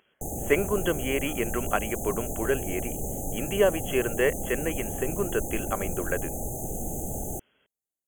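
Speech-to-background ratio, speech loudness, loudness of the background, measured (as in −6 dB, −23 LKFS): 4.0 dB, −29.0 LKFS, −33.0 LKFS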